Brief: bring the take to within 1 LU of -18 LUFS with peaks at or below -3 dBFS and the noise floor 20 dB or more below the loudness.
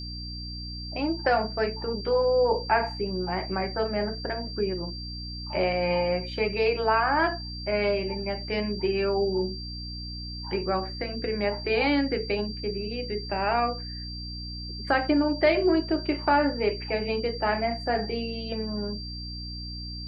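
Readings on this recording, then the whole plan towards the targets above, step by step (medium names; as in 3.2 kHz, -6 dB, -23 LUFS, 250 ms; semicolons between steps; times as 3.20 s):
hum 60 Hz; highest harmonic 300 Hz; hum level -35 dBFS; steady tone 4.7 kHz; tone level -38 dBFS; loudness -27.5 LUFS; peak level -10.5 dBFS; loudness target -18.0 LUFS
-> de-hum 60 Hz, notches 5; band-stop 4.7 kHz, Q 30; trim +9.5 dB; peak limiter -3 dBFS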